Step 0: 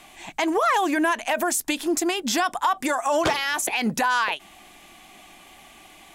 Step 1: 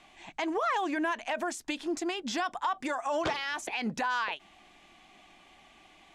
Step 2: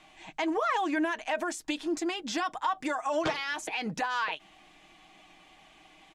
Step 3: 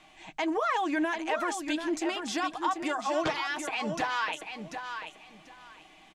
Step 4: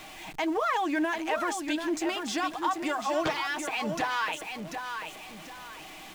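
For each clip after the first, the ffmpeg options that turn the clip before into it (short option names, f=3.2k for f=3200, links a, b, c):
-af "lowpass=5.5k,volume=-8.5dB"
-af "aecho=1:1:6.4:0.45"
-af "aecho=1:1:740|1480|2220:0.422|0.0843|0.0169"
-af "aeval=exprs='val(0)+0.5*0.00794*sgn(val(0))':c=same"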